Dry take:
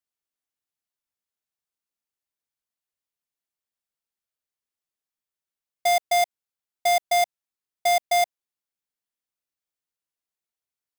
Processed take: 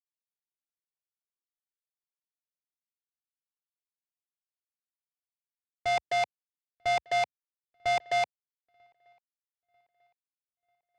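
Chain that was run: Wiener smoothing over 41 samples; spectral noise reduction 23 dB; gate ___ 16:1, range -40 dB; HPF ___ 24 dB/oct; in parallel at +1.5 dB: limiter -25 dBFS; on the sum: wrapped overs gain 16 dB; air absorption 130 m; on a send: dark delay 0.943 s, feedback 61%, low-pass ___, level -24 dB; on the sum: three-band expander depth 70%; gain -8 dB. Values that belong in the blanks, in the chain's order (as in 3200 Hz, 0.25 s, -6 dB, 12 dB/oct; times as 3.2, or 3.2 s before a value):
-37 dBFS, 67 Hz, 3700 Hz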